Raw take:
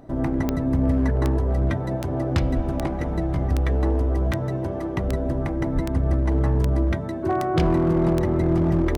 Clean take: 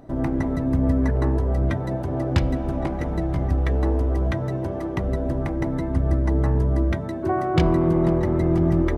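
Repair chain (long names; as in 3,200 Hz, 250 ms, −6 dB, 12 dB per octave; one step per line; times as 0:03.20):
clipped peaks rebuilt −14 dBFS
click removal
high-pass at the plosives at 0:02.55/0:05.74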